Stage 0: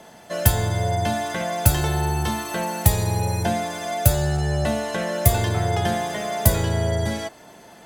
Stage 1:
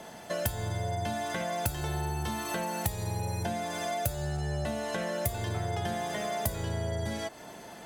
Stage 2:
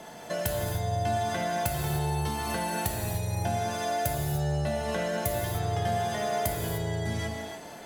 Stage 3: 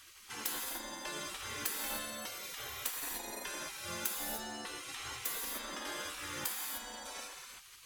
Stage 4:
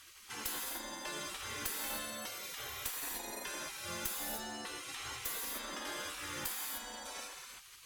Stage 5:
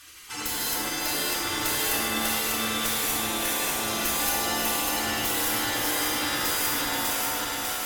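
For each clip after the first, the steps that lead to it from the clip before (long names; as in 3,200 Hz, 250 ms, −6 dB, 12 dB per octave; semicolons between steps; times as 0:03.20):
downward compressor 4 to 1, threshold −31 dBFS, peak gain reduction 17.5 dB
reverb whose tail is shaped and stops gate 330 ms flat, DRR 1 dB
gate on every frequency bin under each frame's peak −20 dB weak
asymmetric clip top −37 dBFS
feedback delay that plays each chunk backwards 298 ms, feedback 81%, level −1 dB; feedback delay network reverb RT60 1.8 s, low-frequency decay 1.2×, high-frequency decay 0.75×, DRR −3 dB; level +5.5 dB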